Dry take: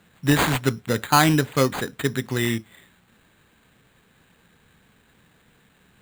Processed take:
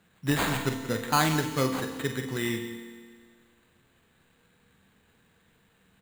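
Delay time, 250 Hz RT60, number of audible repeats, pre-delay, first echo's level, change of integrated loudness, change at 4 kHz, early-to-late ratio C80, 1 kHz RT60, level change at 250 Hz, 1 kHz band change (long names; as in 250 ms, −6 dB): 46 ms, 1.8 s, 2, 4 ms, −9.0 dB, −6.5 dB, −6.0 dB, 8.5 dB, 1.8 s, −6.5 dB, −6.5 dB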